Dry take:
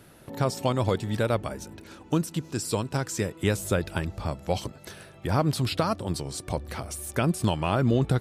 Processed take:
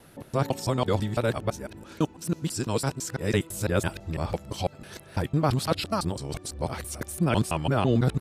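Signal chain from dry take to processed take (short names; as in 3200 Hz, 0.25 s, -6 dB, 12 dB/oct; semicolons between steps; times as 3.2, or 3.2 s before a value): local time reversal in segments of 0.167 s; tempo 1×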